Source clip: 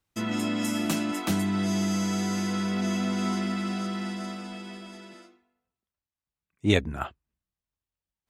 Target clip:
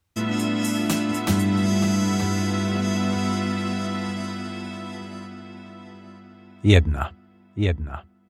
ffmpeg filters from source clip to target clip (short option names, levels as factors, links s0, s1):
-filter_complex "[0:a]equalizer=f=82:t=o:w=0.59:g=13,asplit=2[s0][s1];[s1]adelay=927,lowpass=f=2900:p=1,volume=0.447,asplit=2[s2][s3];[s3]adelay=927,lowpass=f=2900:p=1,volume=0.43,asplit=2[s4][s5];[s5]adelay=927,lowpass=f=2900:p=1,volume=0.43,asplit=2[s6][s7];[s7]adelay=927,lowpass=f=2900:p=1,volume=0.43,asplit=2[s8][s9];[s9]adelay=927,lowpass=f=2900:p=1,volume=0.43[s10];[s0][s2][s4][s6][s8][s10]amix=inputs=6:normalize=0,volume=1.58"